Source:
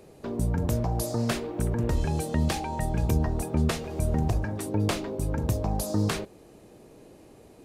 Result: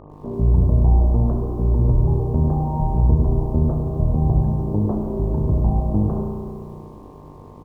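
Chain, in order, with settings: steep low-pass 1 kHz 36 dB/octave; tilt EQ -2.5 dB/octave; mains buzz 50 Hz, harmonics 24, -43 dBFS -3 dB/octave; frequency-shifting echo 236 ms, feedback 50%, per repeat -30 Hz, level -20 dB; spring tank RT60 2 s, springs 33 ms, chirp 50 ms, DRR 2 dB; bit-crushed delay 99 ms, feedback 55%, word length 8-bit, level -14 dB; trim -1.5 dB

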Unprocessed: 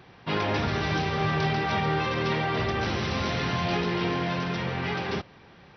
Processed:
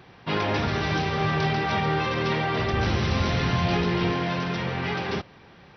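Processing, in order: 2.73–4.12 s: bass shelf 96 Hz +12 dB; trim +1.5 dB

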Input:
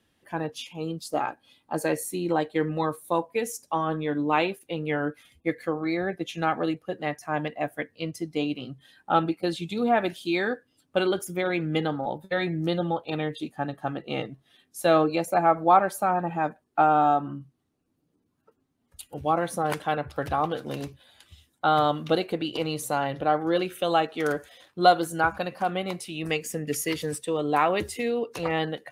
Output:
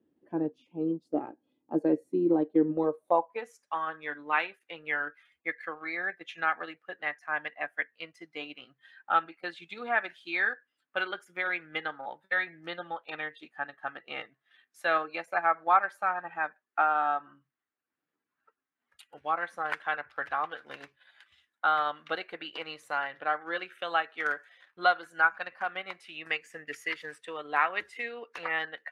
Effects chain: band-pass sweep 320 Hz -> 1.7 kHz, 2.71–3.62 s; transient shaper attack +1 dB, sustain -5 dB; trim +4.5 dB

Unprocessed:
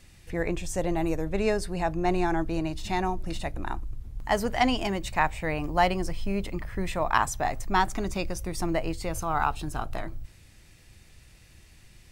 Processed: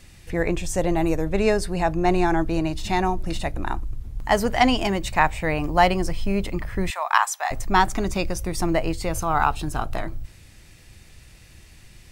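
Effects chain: 6.90–7.51 s: high-pass 800 Hz 24 dB/octave; trim +5.5 dB

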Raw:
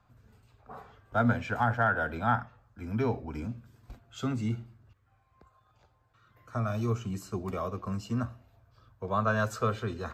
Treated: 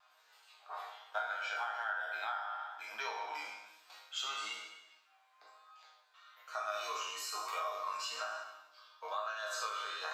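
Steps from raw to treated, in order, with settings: spectral sustain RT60 0.95 s; high-pass 720 Hz 24 dB/octave; peaking EQ 3.8 kHz +9.5 dB 1.4 oct; compression 6:1, threshold -36 dBFS, peak gain reduction 15.5 dB; chord resonator G#2 fifth, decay 0.2 s; vibrato 1.1 Hz 25 cents; trim +10.5 dB

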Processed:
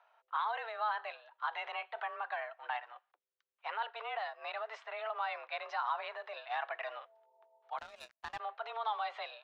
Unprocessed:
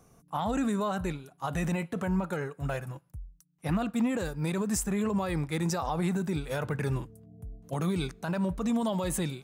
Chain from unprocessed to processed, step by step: mistuned SSB +220 Hz 470–3600 Hz; 7.78–8.40 s: power-law waveshaper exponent 2; trim -2 dB

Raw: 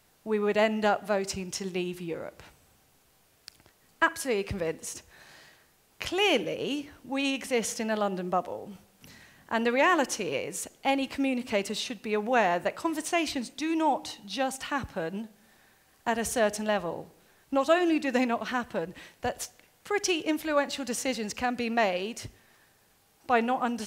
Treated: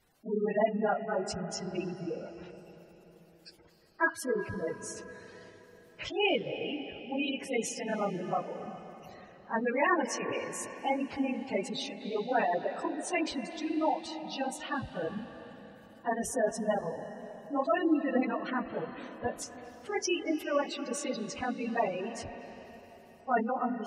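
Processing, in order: phase randomisation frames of 50 ms; spectral gate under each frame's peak -15 dB strong; on a send: resonant high shelf 5.5 kHz -11 dB, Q 1.5 + reverberation RT60 4.1 s, pre-delay 217 ms, DRR 10 dB; on the sum: trim -3.5 dB

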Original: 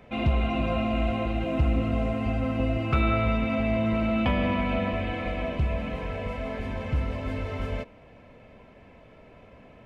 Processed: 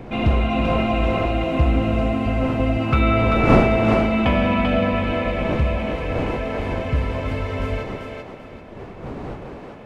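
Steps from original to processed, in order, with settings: wind noise 460 Hz -34 dBFS; on a send: thinning echo 390 ms, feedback 31%, high-pass 360 Hz, level -3.5 dB; on the sum: trim +5.5 dB

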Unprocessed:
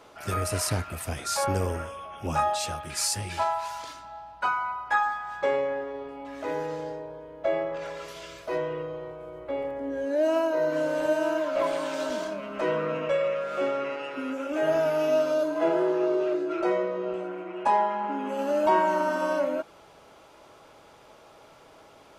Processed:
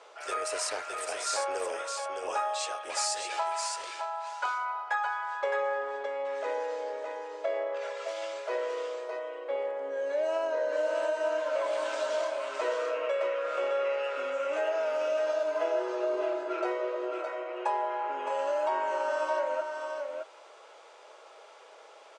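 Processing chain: elliptic band-pass 450–8400 Hz, stop band 40 dB; compression 4:1, threshold -28 dBFS, peak gain reduction 8.5 dB; delay 614 ms -5 dB

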